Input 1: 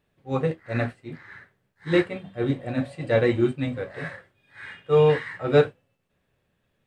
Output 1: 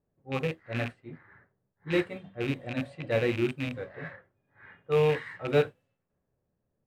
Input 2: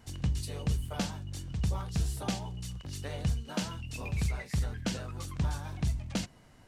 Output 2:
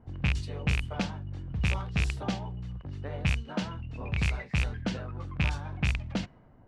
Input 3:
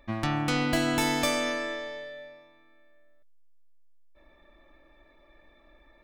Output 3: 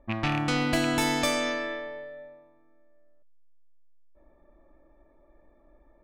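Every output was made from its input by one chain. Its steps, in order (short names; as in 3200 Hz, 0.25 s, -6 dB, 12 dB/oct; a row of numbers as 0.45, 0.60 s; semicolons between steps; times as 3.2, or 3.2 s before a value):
rattling part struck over -27 dBFS, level -19 dBFS; companded quantiser 8-bit; low-pass opened by the level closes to 810 Hz, open at -22 dBFS; normalise peaks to -12 dBFS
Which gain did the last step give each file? -6.5, +2.0, +0.5 dB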